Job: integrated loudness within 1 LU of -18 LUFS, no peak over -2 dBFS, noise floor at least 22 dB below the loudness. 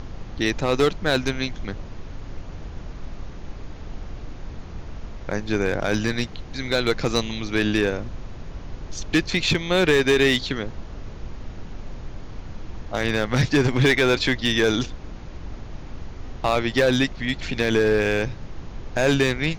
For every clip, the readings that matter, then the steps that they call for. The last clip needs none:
clipped samples 0.7%; clipping level -12.0 dBFS; noise floor -38 dBFS; noise floor target -44 dBFS; loudness -22.0 LUFS; peak level -12.0 dBFS; loudness target -18.0 LUFS
-> clip repair -12 dBFS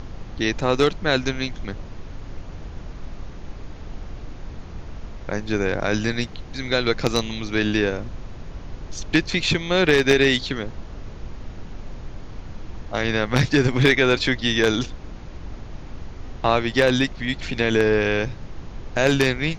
clipped samples 0.0%; noise floor -38 dBFS; noise floor target -44 dBFS
-> noise print and reduce 6 dB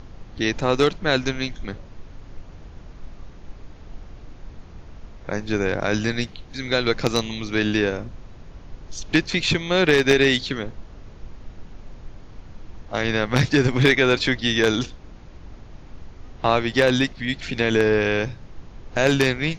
noise floor -43 dBFS; noise floor target -44 dBFS
-> noise print and reduce 6 dB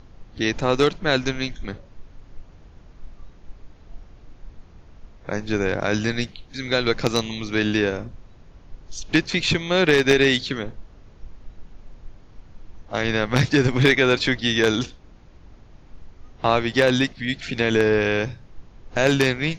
noise floor -49 dBFS; loudness -21.5 LUFS; peak level -3.0 dBFS; loudness target -18.0 LUFS
-> trim +3.5 dB; peak limiter -2 dBFS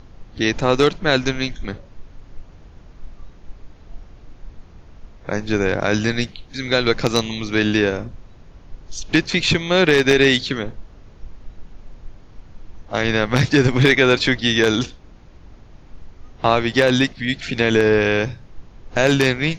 loudness -18.0 LUFS; peak level -2.0 dBFS; noise floor -45 dBFS

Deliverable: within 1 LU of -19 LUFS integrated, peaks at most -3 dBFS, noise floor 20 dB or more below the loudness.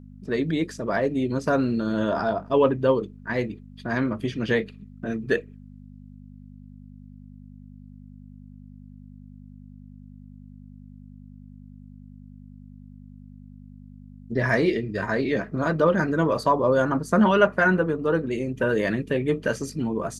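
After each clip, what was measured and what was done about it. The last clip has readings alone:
hum 50 Hz; highest harmonic 250 Hz; hum level -42 dBFS; loudness -24.0 LUFS; peak level -5.5 dBFS; loudness target -19.0 LUFS
-> de-hum 50 Hz, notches 5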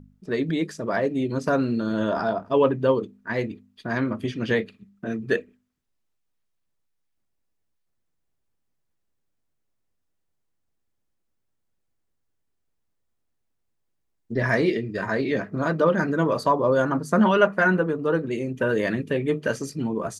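hum not found; loudness -24.0 LUFS; peak level -5.0 dBFS; loudness target -19.0 LUFS
-> trim +5 dB; peak limiter -3 dBFS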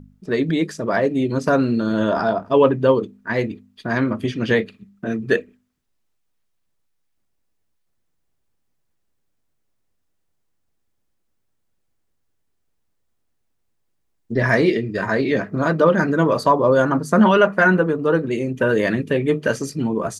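loudness -19.0 LUFS; peak level -3.0 dBFS; noise floor -70 dBFS

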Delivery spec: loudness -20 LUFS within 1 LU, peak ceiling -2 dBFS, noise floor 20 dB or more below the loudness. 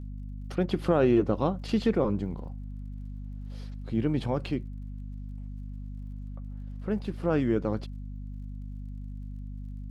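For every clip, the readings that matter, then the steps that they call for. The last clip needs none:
tick rate 33 per s; hum 50 Hz; highest harmonic 250 Hz; hum level -36 dBFS; loudness -28.5 LUFS; peak level -11.5 dBFS; loudness target -20.0 LUFS
-> de-click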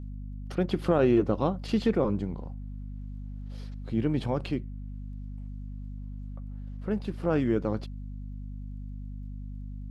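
tick rate 0.10 per s; hum 50 Hz; highest harmonic 250 Hz; hum level -36 dBFS
-> de-hum 50 Hz, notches 5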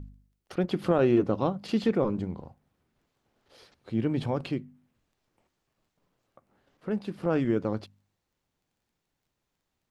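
hum not found; loudness -28.5 LUFS; peak level -11.5 dBFS; loudness target -20.0 LUFS
-> trim +8.5 dB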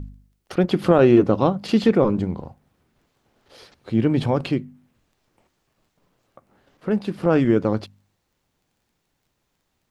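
loudness -20.0 LUFS; peak level -3.0 dBFS; noise floor -74 dBFS

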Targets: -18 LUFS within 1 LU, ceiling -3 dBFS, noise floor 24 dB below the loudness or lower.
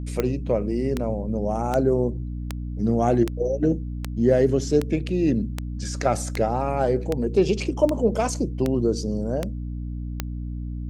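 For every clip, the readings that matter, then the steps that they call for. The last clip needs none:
clicks found 14; hum 60 Hz; highest harmonic 300 Hz; hum level -28 dBFS; loudness -24.5 LUFS; peak level -7.0 dBFS; loudness target -18.0 LUFS
-> de-click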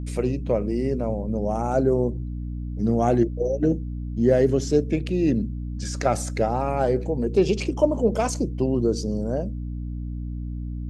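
clicks found 0; hum 60 Hz; highest harmonic 300 Hz; hum level -28 dBFS
-> de-hum 60 Hz, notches 5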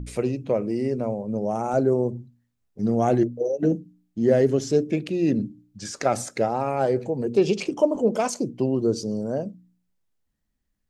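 hum not found; loudness -24.0 LUFS; peak level -7.5 dBFS; loudness target -18.0 LUFS
-> trim +6 dB; peak limiter -3 dBFS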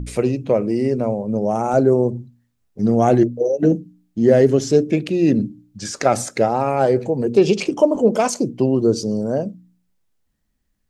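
loudness -18.5 LUFS; peak level -3.0 dBFS; noise floor -69 dBFS

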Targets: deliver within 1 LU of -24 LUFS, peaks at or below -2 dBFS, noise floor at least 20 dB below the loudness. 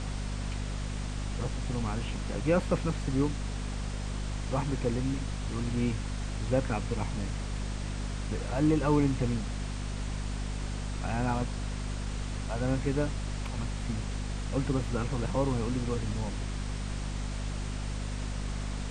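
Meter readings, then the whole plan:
hum 50 Hz; highest harmonic 250 Hz; hum level -32 dBFS; noise floor -35 dBFS; noise floor target -53 dBFS; loudness -33.0 LUFS; peak level -13.5 dBFS; loudness target -24.0 LUFS
-> de-hum 50 Hz, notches 5; noise print and reduce 18 dB; trim +9 dB

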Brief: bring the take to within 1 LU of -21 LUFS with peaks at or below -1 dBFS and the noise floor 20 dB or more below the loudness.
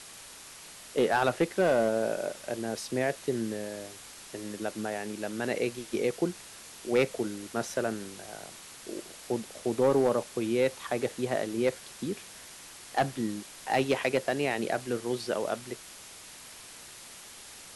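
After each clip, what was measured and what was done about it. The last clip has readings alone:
clipped samples 0.3%; clipping level -17.5 dBFS; noise floor -48 dBFS; noise floor target -51 dBFS; loudness -30.5 LUFS; peak level -17.5 dBFS; loudness target -21.0 LUFS
-> clip repair -17.5 dBFS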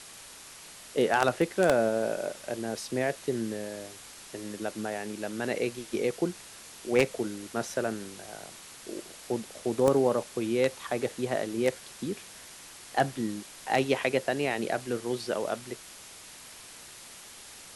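clipped samples 0.0%; noise floor -48 dBFS; noise floor target -50 dBFS
-> noise print and reduce 6 dB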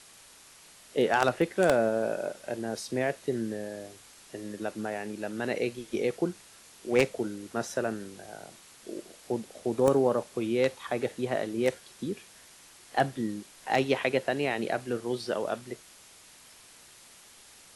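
noise floor -54 dBFS; loudness -30.0 LUFS; peak level -8.5 dBFS; loudness target -21.0 LUFS
-> trim +9 dB; peak limiter -1 dBFS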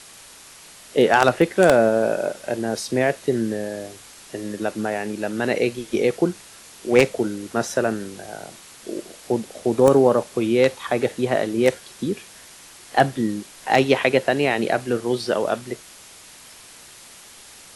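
loudness -21.0 LUFS; peak level -1.0 dBFS; noise floor -45 dBFS

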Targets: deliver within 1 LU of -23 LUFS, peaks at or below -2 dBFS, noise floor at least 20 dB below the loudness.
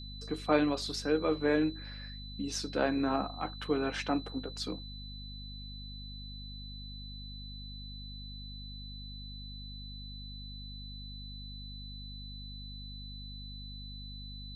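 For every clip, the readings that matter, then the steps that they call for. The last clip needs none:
hum 50 Hz; highest harmonic 250 Hz; hum level -43 dBFS; steady tone 4 kHz; tone level -47 dBFS; loudness -37.0 LUFS; peak level -13.0 dBFS; loudness target -23.0 LUFS
-> hum notches 50/100/150/200/250 Hz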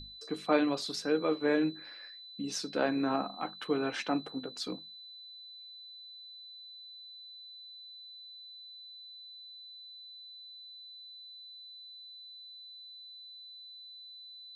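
hum not found; steady tone 4 kHz; tone level -47 dBFS
-> band-stop 4 kHz, Q 30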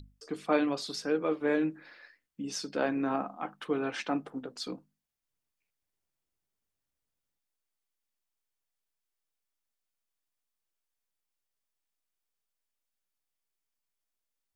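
steady tone not found; loudness -32.5 LUFS; peak level -13.0 dBFS; loudness target -23.0 LUFS
-> trim +9.5 dB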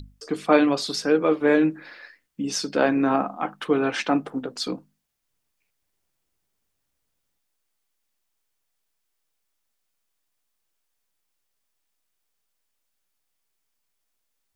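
loudness -23.0 LUFS; peak level -3.5 dBFS; noise floor -77 dBFS

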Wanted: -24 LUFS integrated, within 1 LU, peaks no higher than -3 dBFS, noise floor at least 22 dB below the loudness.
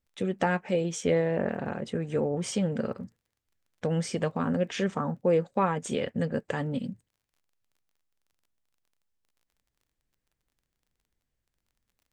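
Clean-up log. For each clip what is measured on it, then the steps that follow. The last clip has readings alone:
tick rate 20 per s; loudness -29.5 LUFS; peak level -12.5 dBFS; loudness target -24.0 LUFS
-> de-click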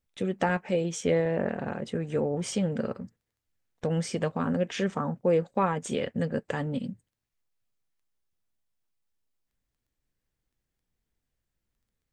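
tick rate 0.082 per s; loudness -29.5 LUFS; peak level -12.5 dBFS; loudness target -24.0 LUFS
-> trim +5.5 dB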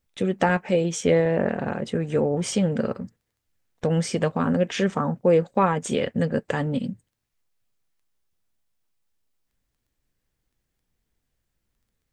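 loudness -24.0 LUFS; peak level -7.0 dBFS; noise floor -79 dBFS

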